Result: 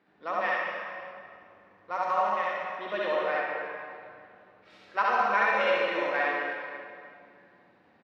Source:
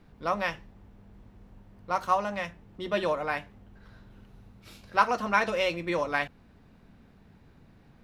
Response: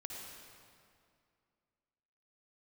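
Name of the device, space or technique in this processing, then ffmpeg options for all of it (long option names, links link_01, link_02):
station announcement: -filter_complex "[0:a]highpass=340,lowpass=3600,equalizer=frequency=1800:width_type=o:width=0.32:gain=6,aecho=1:1:67.06|99.13:0.891|0.282[link_01];[1:a]atrim=start_sample=2205[link_02];[link_01][link_02]afir=irnorm=-1:irlink=0,asettb=1/sr,asplit=3[link_03][link_04][link_05];[link_03]atrim=end=3.404[link_06];[link_04]atrim=start=3.4:end=4.7,asetpts=PTS-STARTPTS,afade=type=in:duration=0.004:curve=qsin,afade=type=out:start_time=1.296:duration=0.004:curve=qsin,highshelf=frequency=5300:gain=-8.5[link_07];[link_05]atrim=start=4.696[link_08];[link_06][link_07]acrossfade=duration=0.004:curve1=hsin:curve2=qsin[link_09];[link_09][link_08]acrossfade=duration=0.004:curve1=qsin:curve2=hsin"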